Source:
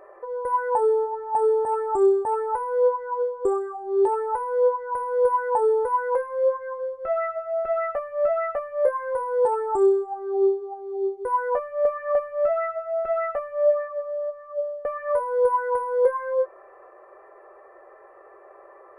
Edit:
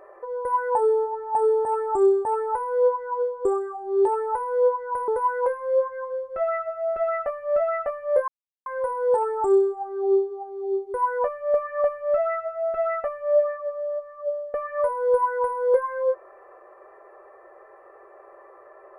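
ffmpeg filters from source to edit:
-filter_complex "[0:a]asplit=3[a][b][c];[a]atrim=end=5.082[d];[b]atrim=start=5.768:end=8.97,asetpts=PTS-STARTPTS,afade=t=out:st=3.198:d=0.004:c=hsin,apad=pad_dur=0.38[e];[c]atrim=start=8.97,asetpts=PTS-STARTPTS,afade=t=in:d=0.004:c=hsin[f];[e][f]concat=n=2:v=0:a=1[g];[d][g]acrossfade=d=0.004:c1=hsin:c2=hsin"

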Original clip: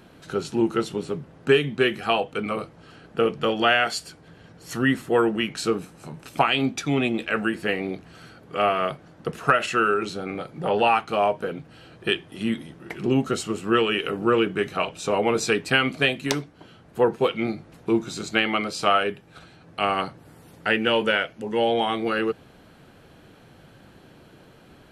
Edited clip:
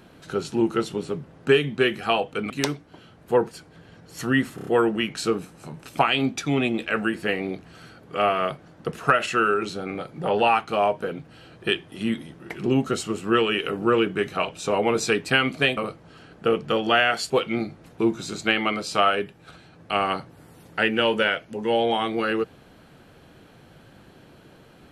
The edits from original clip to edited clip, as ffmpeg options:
-filter_complex "[0:a]asplit=9[a][b][c][d][e][f][g][h][i];[a]atrim=end=2.502[j];[b]atrim=start=16.168:end=17.182[k];[c]atrim=start=4.028:end=5.102[l];[d]atrim=start=5.068:end=5.102[m];[e]atrim=start=5.068:end=5.102[n];[f]atrim=start=5.068:end=5.102[o];[g]atrim=start=5.068:end=16.172[p];[h]atrim=start=2.498:end=4.032[q];[i]atrim=start=17.178[r];[j][k]acrossfade=d=0.004:c1=hsin:c2=hsin[s];[s][l]acrossfade=d=0.004:c1=hsin:c2=hsin[t];[t][m]acrossfade=d=0.004:c1=hsin:c2=hsin[u];[u][n]acrossfade=d=0.004:c1=hsin:c2=hsin[v];[v][o]acrossfade=d=0.004:c1=hsin:c2=hsin[w];[w][p]acrossfade=d=0.004:c1=hsin:c2=hsin[x];[x][q]acrossfade=d=0.004:c1=hsin:c2=hsin[y];[y][r]acrossfade=d=0.004:c1=hsin:c2=hsin"

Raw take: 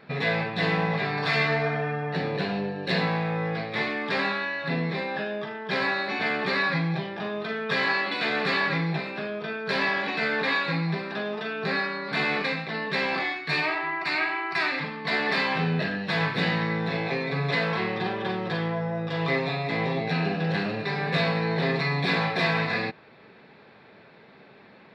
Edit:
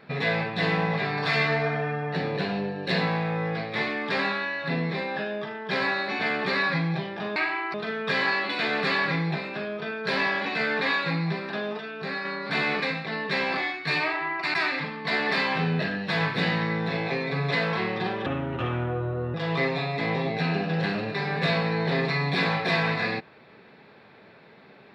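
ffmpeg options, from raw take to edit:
-filter_complex "[0:a]asplit=8[a][b][c][d][e][f][g][h];[a]atrim=end=7.362[i];[b]atrim=start=14.158:end=14.542[j];[c]atrim=start=7.358:end=11.412[k];[d]atrim=start=11.408:end=11.872,asetpts=PTS-STARTPTS,volume=-5dB[l];[e]atrim=start=11.868:end=14.162[m];[f]atrim=start=14.538:end=18.264[n];[g]atrim=start=18.26:end=19.05,asetpts=PTS-STARTPTS,asetrate=32193,aresample=44100[o];[h]atrim=start=19.046[p];[i][j]acrossfade=d=0.004:c1=hsin:c2=hsin[q];[q][k]acrossfade=d=0.004:c1=hsin:c2=hsin[r];[r][l]acrossfade=d=0.004:c1=hsin:c2=hsin[s];[s][m]acrossfade=d=0.004:c1=hsin:c2=hsin[t];[t][n]acrossfade=d=0.004:c1=hsin:c2=hsin[u];[u][o]acrossfade=d=0.004:c1=hsin:c2=hsin[v];[v][p]acrossfade=d=0.004:c1=hsin:c2=hsin"

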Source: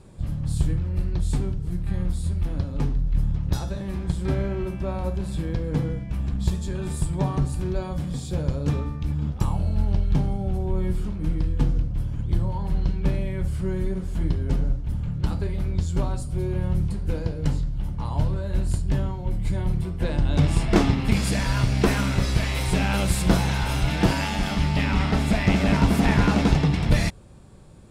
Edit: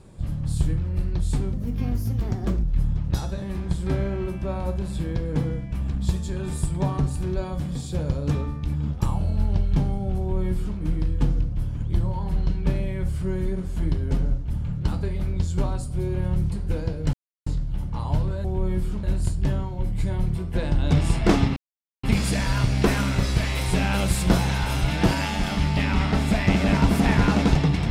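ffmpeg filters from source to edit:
-filter_complex "[0:a]asplit=7[a][b][c][d][e][f][g];[a]atrim=end=1.534[h];[b]atrim=start=1.53:end=3.02,asetpts=PTS-STARTPTS,asetrate=59535,aresample=44100,atrim=end_sample=48673,asetpts=PTS-STARTPTS[i];[c]atrim=start=3.016:end=17.52,asetpts=PTS-STARTPTS,afade=t=out:st=14.5:d=0.004:c=hsin,apad=pad_dur=0.33[j];[d]atrim=start=17.52:end=18.502,asetpts=PTS-STARTPTS,afade=t=in:d=0.004:c=hsin[k];[e]atrim=start=10.568:end=11.162[l];[f]atrim=start=18.498:end=21.03,asetpts=PTS-STARTPTS,afade=t=out:st=2.528:d=0.004:c=hsin,apad=pad_dur=0.47[m];[g]atrim=start=21.03,asetpts=PTS-STARTPTS,afade=t=in:d=0.004:c=hsin[n];[h][i]acrossfade=d=0.004:c1=hsin:c2=hsin[o];[j][k]concat=n=2:v=0:a=1[p];[o][p]acrossfade=d=0.004:c1=hsin:c2=hsin[q];[q][l]acrossfade=d=0.004:c1=hsin:c2=hsin[r];[m][n]concat=n=2:v=0:a=1[s];[r][s]acrossfade=d=0.004:c1=hsin:c2=hsin"

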